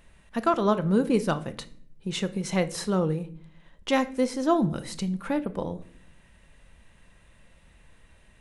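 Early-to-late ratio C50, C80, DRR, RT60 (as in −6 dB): 17.0 dB, 21.0 dB, 11.0 dB, 0.60 s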